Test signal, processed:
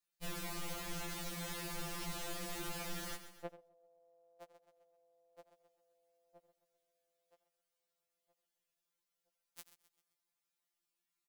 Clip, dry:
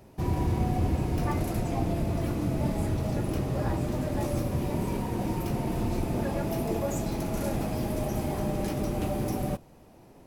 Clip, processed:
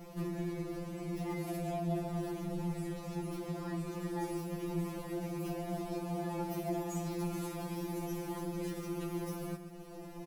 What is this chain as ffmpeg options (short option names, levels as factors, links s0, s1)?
-filter_complex "[0:a]asplit=2[s0][s1];[s1]aecho=0:1:131|262|393|524:0.178|0.0765|0.0329|0.0141[s2];[s0][s2]amix=inputs=2:normalize=0,acompressor=threshold=0.00501:ratio=2.5,asplit=2[s3][s4];[s4]aecho=0:1:88:0.178[s5];[s3][s5]amix=inputs=2:normalize=0,afftfilt=real='re*2.83*eq(mod(b,8),0)':imag='im*2.83*eq(mod(b,8),0)':win_size=2048:overlap=0.75,volume=2.37"